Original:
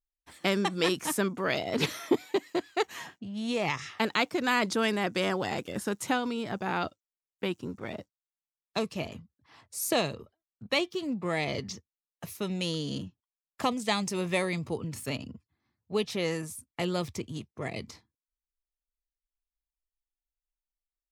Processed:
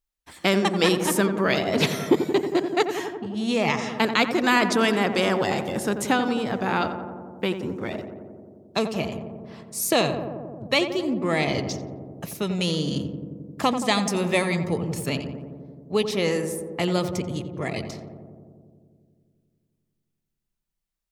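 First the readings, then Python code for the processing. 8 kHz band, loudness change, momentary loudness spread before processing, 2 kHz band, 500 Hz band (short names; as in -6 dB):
+6.0 dB, +7.0 dB, 12 LU, +6.5 dB, +7.5 dB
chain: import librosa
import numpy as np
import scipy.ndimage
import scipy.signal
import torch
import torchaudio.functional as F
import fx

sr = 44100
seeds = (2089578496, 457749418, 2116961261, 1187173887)

y = fx.echo_filtered(x, sr, ms=88, feedback_pct=82, hz=1400.0, wet_db=-8.0)
y = F.gain(torch.from_numpy(y), 6.0).numpy()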